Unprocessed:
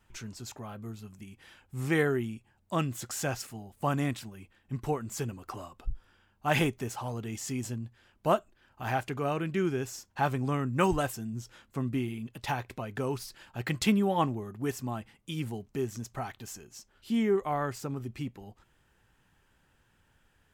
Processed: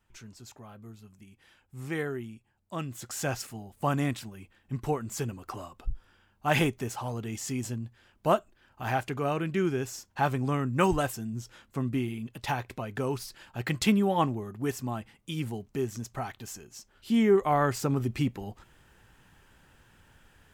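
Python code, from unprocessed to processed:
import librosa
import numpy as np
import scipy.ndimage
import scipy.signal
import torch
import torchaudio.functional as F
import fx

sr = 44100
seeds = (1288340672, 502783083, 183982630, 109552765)

y = fx.gain(x, sr, db=fx.line((2.76, -6.0), (3.3, 1.5), (16.76, 1.5), (17.97, 8.5)))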